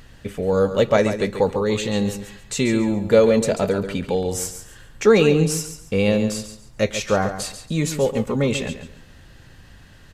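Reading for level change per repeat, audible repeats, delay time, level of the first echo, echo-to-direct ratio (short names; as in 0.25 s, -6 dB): -11.5 dB, 3, 0.139 s, -10.0 dB, -9.5 dB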